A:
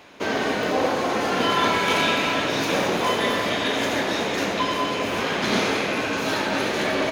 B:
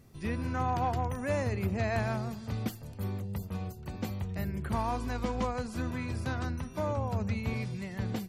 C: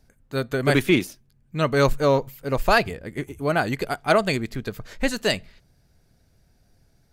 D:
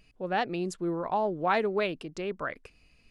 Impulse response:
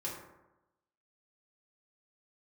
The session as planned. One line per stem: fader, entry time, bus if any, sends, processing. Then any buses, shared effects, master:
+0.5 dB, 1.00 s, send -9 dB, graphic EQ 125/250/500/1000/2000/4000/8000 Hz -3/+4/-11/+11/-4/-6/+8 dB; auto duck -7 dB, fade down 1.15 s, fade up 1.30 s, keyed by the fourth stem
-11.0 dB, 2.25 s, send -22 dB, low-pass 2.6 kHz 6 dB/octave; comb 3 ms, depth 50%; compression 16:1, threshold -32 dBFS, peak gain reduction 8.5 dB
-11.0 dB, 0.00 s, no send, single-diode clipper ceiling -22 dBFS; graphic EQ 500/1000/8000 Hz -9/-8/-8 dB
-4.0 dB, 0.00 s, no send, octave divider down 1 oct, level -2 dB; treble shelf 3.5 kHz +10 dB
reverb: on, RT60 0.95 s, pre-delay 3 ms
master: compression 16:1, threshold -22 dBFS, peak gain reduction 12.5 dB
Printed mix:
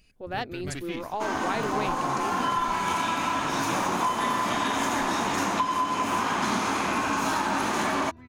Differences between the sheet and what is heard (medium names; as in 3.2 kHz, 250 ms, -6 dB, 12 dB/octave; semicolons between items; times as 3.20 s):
stem B: send off; reverb return -8.5 dB